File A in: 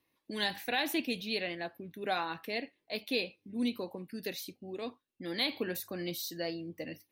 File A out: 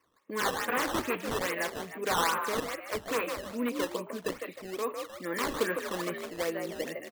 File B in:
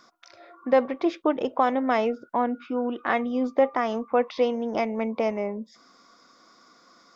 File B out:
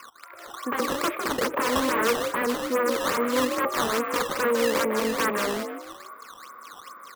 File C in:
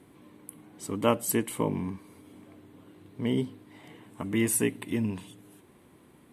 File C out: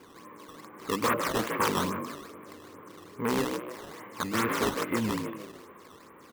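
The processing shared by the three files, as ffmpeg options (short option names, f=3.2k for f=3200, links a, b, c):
-filter_complex "[0:a]asplit=2[a][b];[b]asoftclip=type=tanh:threshold=-25.5dB,volume=-4.5dB[c];[a][c]amix=inputs=2:normalize=0,acrusher=bits=7:mode=log:mix=0:aa=0.000001,equalizer=f=250:w=0.53:g=-10.5,aeval=exprs='(mod(17.8*val(0)+1,2)-1)/17.8':c=same,highpass=110,equalizer=f=130:t=q:w=4:g=-9,equalizer=f=470:t=q:w=4:g=6,equalizer=f=690:t=q:w=4:g=-8,equalizer=f=1.1k:t=q:w=4:g=8,lowpass=f=2.1k:w=0.5412,lowpass=f=2.1k:w=1.3066,asplit=2[d][e];[e]asplit=5[f][g][h][i][j];[f]adelay=154,afreqshift=53,volume=-5.5dB[k];[g]adelay=308,afreqshift=106,volume=-13.5dB[l];[h]adelay=462,afreqshift=159,volume=-21.4dB[m];[i]adelay=616,afreqshift=212,volume=-29.4dB[n];[j]adelay=770,afreqshift=265,volume=-37.3dB[o];[k][l][m][n][o]amix=inputs=5:normalize=0[p];[d][p]amix=inputs=2:normalize=0,acrusher=samples=11:mix=1:aa=0.000001:lfo=1:lforange=17.6:lforate=2.4,bandreject=f=50:t=h:w=6,bandreject=f=100:t=h:w=6,bandreject=f=150:t=h:w=6,volume=6.5dB"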